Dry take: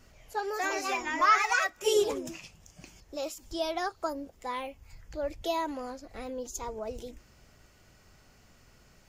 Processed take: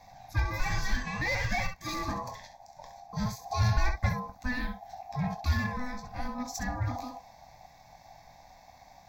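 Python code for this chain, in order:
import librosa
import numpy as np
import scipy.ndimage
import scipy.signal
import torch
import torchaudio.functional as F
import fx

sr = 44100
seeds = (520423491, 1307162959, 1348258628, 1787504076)

y = fx.octave_divider(x, sr, octaves=2, level_db=-6.0)
y = fx.rider(y, sr, range_db=3, speed_s=0.5)
y = fx.room_early_taps(y, sr, ms=(22, 67), db=(-8.5, -9.0))
y = np.clip(y, -10.0 ** (-26.5 / 20.0), 10.0 ** (-26.5 / 20.0))
y = fx.low_shelf(y, sr, hz=450.0, db=6.0, at=(2.08, 4.09))
y = y * np.sin(2.0 * np.pi * 750.0 * np.arange(len(y)) / sr)
y = fx.low_shelf(y, sr, hz=170.0, db=11.5)
y = fx.fixed_phaser(y, sr, hz=2000.0, stages=8)
y = y * 10.0 ** (3.5 / 20.0)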